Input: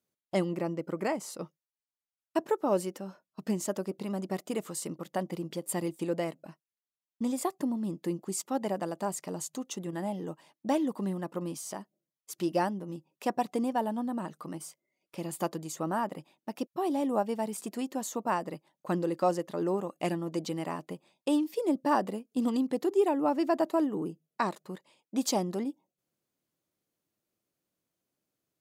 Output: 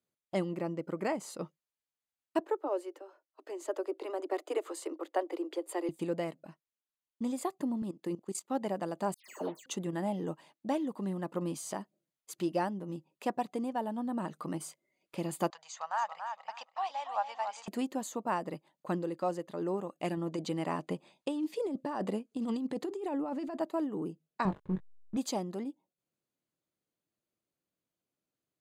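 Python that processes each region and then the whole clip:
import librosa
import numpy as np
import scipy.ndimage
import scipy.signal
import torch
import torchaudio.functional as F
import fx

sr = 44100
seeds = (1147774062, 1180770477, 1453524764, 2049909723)

y = fx.chain(x, sr, fx.steep_highpass(hz=290.0, slope=96),
    fx.high_shelf(hz=3100.0, db=-9.5), at=(2.4, 5.89))
y = fx.chain(y, sr, fx.level_steps(step_db=17),
    fx.highpass(hz=190.0, slope=12), at=(7.82, 8.5))
y = fx.chain(y, sr, fx.highpass(hz=240.0, slope=24),
    fx.resample_bad(factor=6, down='filtered', up='hold'),
    fx.dispersion(late='lows', ms=140.0, hz=2200.0), at=(9.14, 9.66))
y = fx.chain(y, sr, fx.ellip_bandpass(low_hz=790.0, high_hz=6300.0, order=3, stop_db=40),
    fx.echo_feedback(ms=283, feedback_pct=20, wet_db=-8.0), at=(15.5, 17.68))
y = fx.chain(y, sr, fx.lowpass(hz=11000.0, slope=12),
    fx.over_compress(threshold_db=-31.0, ratio=-1.0), at=(20.17, 23.61))
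y = fx.chain(y, sr, fx.backlash(play_db=-42.5),
    fx.bass_treble(bass_db=14, treble_db=-12),
    fx.doubler(ms=21.0, db=-7.5), at=(24.45, 25.17))
y = fx.notch(y, sr, hz=5500.0, q=7.8)
y = fx.rider(y, sr, range_db=5, speed_s=0.5)
y = fx.high_shelf(y, sr, hz=11000.0, db=-9.0)
y = y * 10.0 ** (-2.0 / 20.0)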